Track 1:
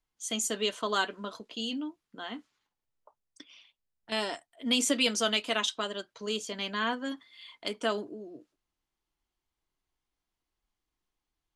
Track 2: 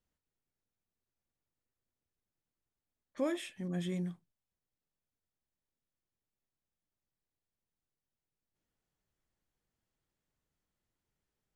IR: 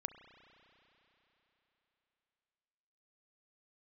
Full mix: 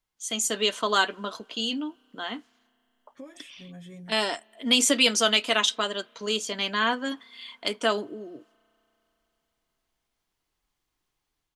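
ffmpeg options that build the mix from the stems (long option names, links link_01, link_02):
-filter_complex "[0:a]lowshelf=frequency=490:gain=-4.5,volume=2dB,asplit=2[link_01][link_02];[link_02]volume=-20.5dB[link_03];[1:a]aecho=1:1:7.2:0.93,acompressor=threshold=-33dB:ratio=6,volume=-11.5dB[link_04];[2:a]atrim=start_sample=2205[link_05];[link_03][link_05]afir=irnorm=-1:irlink=0[link_06];[link_01][link_04][link_06]amix=inputs=3:normalize=0,dynaudnorm=framelen=300:gausssize=3:maxgain=4.5dB"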